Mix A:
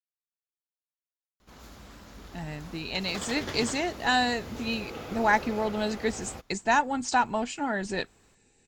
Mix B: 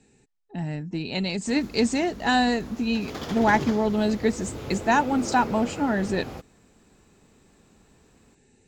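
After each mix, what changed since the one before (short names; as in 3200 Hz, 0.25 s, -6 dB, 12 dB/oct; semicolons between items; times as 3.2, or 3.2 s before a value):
speech: entry -1.80 s; master: add bell 200 Hz +8.5 dB 2.8 oct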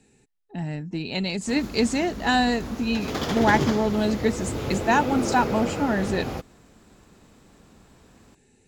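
speech: remove Chebyshev low-pass 8700 Hz, order 5; background +6.5 dB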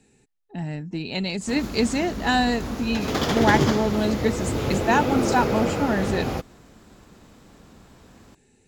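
background +4.0 dB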